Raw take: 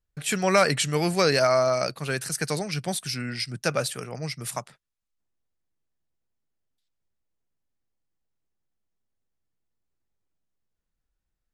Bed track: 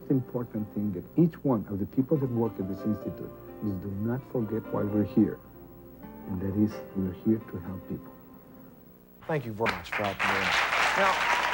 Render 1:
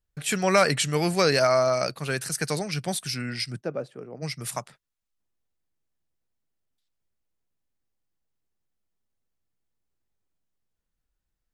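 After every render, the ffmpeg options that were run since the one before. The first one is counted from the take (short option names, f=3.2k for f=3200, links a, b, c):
-filter_complex "[0:a]asplit=3[a][b][c];[a]afade=t=out:st=3.6:d=0.02[d];[b]bandpass=f=340:t=q:w=1.2,afade=t=in:st=3.6:d=0.02,afade=t=out:st=4.21:d=0.02[e];[c]afade=t=in:st=4.21:d=0.02[f];[d][e][f]amix=inputs=3:normalize=0"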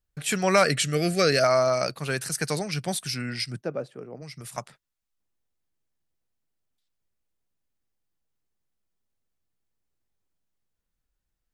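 -filter_complex "[0:a]asettb=1/sr,asplit=3[a][b][c];[a]atrim=end=0.644[d];[b]atrim=start=0.64:end=1.44,asetpts=PTS-STARTPTS,afade=t=in:d=0.004:c=qsin,afade=t=out:st=0.796:d=0.004:c=qsin,asuperstop=centerf=920:order=8:qfactor=2.4[e];[c]atrim=start=1.436[f];[d][e]acrossfade=d=0.004:c1=hsin:c2=qsin[g];[g][f]acrossfade=d=0.004:c1=qsin:c2=hsin,asettb=1/sr,asplit=3[h][i][j];[h]atrim=end=4.184[k];[i]atrim=start=4.18:end=4.58,asetpts=PTS-STARTPTS,afade=t=in:d=0.004:c=qsin,afade=t=out:st=0.396:d=0.004:c=qsin,acompressor=threshold=-37dB:ratio=6:attack=3.2:release=140:knee=1:detection=peak[l];[j]atrim=start=4.576[m];[k][l]acrossfade=d=0.004:c1=hsin:c2=qsin[n];[n][m]acrossfade=d=0.004:c1=qsin:c2=hsin"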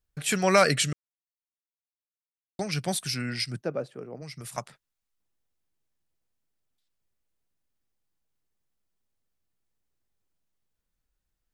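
-filter_complex "[0:a]asplit=3[a][b][c];[a]atrim=end=0.93,asetpts=PTS-STARTPTS,afade=t=out:st=0.926:d=0.004:c=hsin[d];[b]atrim=start=0.93:end=2.59,asetpts=PTS-STARTPTS,volume=0[e];[c]atrim=start=2.59,asetpts=PTS-STARTPTS,afade=t=in:d=0.004:c=hsin[f];[d][e][f]concat=n=3:v=0:a=1"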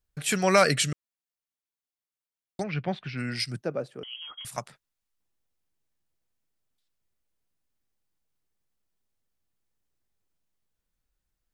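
-filter_complex "[0:a]asplit=3[a][b][c];[a]afade=t=out:st=2.62:d=0.02[d];[b]lowpass=f=2.9k:w=0.5412,lowpass=f=2.9k:w=1.3066,afade=t=in:st=2.62:d=0.02,afade=t=out:st=3.17:d=0.02[e];[c]afade=t=in:st=3.17:d=0.02[f];[d][e][f]amix=inputs=3:normalize=0,asettb=1/sr,asplit=3[g][h][i];[g]atrim=end=4.034[j];[h]atrim=start=4.03:end=4.45,asetpts=PTS-STARTPTS,afade=t=in:d=0.004:c=qsin,afade=t=out:st=0.416:d=0.004:c=qsin,lowpass=f=2.9k:t=q:w=0.5098,lowpass=f=2.9k:t=q:w=0.6013,lowpass=f=2.9k:t=q:w=0.9,lowpass=f=2.9k:t=q:w=2.563,afreqshift=-3400[k];[i]atrim=start=4.446[l];[j][k]acrossfade=d=0.004:c1=hsin:c2=qsin[m];[m][l]acrossfade=d=0.004:c1=qsin:c2=hsin"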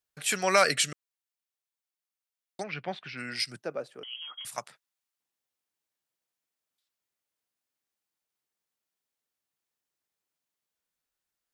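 -af "highpass=f=620:p=1"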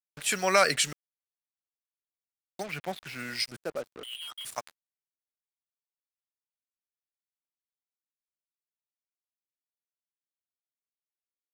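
-af "acrusher=bits=6:mix=0:aa=0.5"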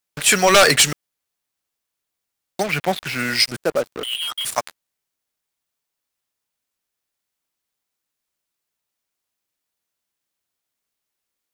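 -af "acrusher=bits=6:mode=log:mix=0:aa=0.000001,aeval=exprs='0.473*sin(PI/2*3.55*val(0)/0.473)':c=same"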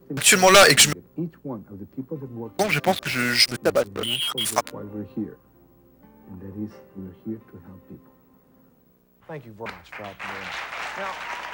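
-filter_complex "[1:a]volume=-7dB[a];[0:a][a]amix=inputs=2:normalize=0"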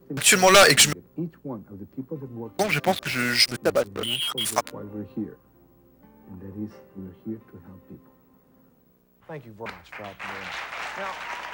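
-af "volume=-1.5dB"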